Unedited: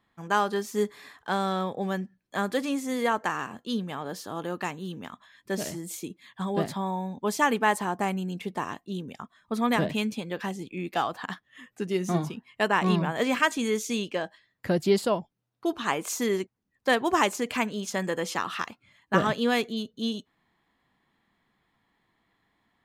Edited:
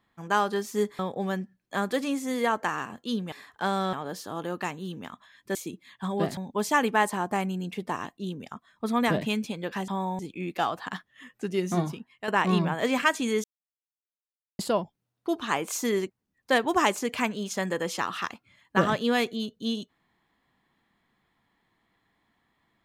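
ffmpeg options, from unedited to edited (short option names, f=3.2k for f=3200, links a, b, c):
-filter_complex "[0:a]asplit=11[a][b][c][d][e][f][g][h][i][j][k];[a]atrim=end=0.992[l];[b]atrim=start=1.598:end=3.932[m];[c]atrim=start=0.988:end=1.602[n];[d]atrim=start=3.928:end=5.552[o];[e]atrim=start=5.918:end=6.742[p];[f]atrim=start=7.048:end=10.562[q];[g]atrim=start=6.738:end=7.052[r];[h]atrim=start=10.558:end=12.65,asetpts=PTS-STARTPTS,afade=t=out:st=1.652:d=0.44:silence=0.316228[s];[i]atrim=start=12.65:end=13.81,asetpts=PTS-STARTPTS,afade=t=in:d=0.004:c=hsin:silence=0.316228,afade=t=out:st=1.156:d=0.004:c=hsin[t];[j]atrim=start=13.81:end=14.96,asetpts=PTS-STARTPTS,volume=0[u];[k]atrim=start=14.96,asetpts=PTS-STARTPTS,afade=t=in:d=0.004:c=hsin[v];[l][m]acrossfade=d=0.004:c1=hsin:c2=hsin[w];[w][n]acrossfade=d=0.004:c1=hsin:c2=hsin[x];[x][o]acrossfade=d=0.004:c1=hsin:c2=hsin[y];[y][p]acrossfade=d=0.004:c1=hsin:c2=hsin[z];[z][q]acrossfade=d=0.004:c1=hsin:c2=hsin[aa];[aa][r]acrossfade=d=0.004:c1=hsin:c2=hsin[ab];[s][t][u][v]concat=n=4:v=0:a=1[ac];[ab][ac]acrossfade=d=0.004:c1=hsin:c2=hsin"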